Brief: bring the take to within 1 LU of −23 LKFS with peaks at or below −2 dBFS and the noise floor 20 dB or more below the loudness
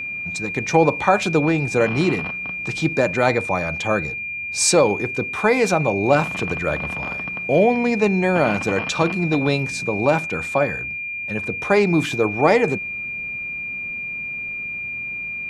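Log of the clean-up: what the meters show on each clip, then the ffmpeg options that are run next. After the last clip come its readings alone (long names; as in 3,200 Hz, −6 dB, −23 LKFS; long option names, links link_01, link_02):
interfering tone 2,400 Hz; level of the tone −26 dBFS; integrated loudness −20.5 LKFS; sample peak −1.5 dBFS; target loudness −23.0 LKFS
→ -af "bandreject=frequency=2400:width=30"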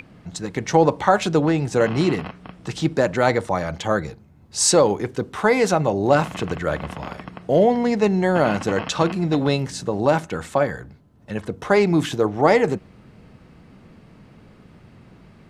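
interfering tone none found; integrated loudness −20.5 LKFS; sample peak −1.5 dBFS; target loudness −23.0 LKFS
→ -af "volume=-2.5dB"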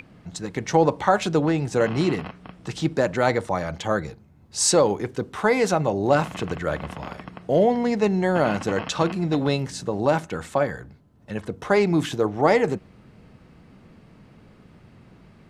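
integrated loudness −23.0 LKFS; sample peak −4.0 dBFS; background noise floor −52 dBFS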